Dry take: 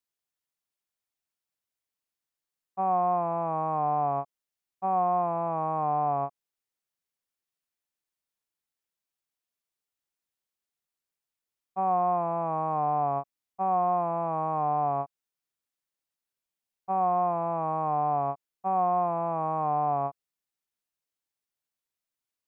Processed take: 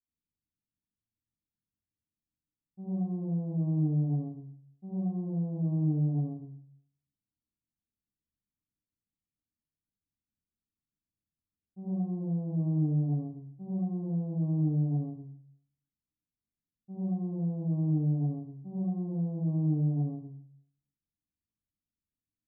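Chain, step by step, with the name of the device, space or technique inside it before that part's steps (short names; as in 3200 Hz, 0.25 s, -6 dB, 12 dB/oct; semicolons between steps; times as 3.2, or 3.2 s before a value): next room (LPF 260 Hz 24 dB/oct; reverb RT60 0.60 s, pre-delay 59 ms, DRR -9 dB)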